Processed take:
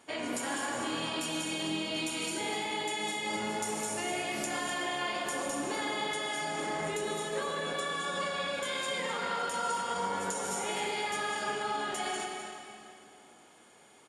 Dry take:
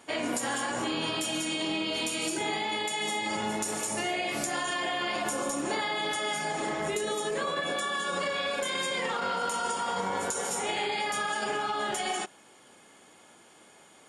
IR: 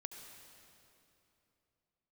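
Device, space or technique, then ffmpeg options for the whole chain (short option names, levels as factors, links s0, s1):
cave: -filter_complex "[0:a]aecho=1:1:254:0.335[s0];[1:a]atrim=start_sample=2205[s1];[s0][s1]afir=irnorm=-1:irlink=0"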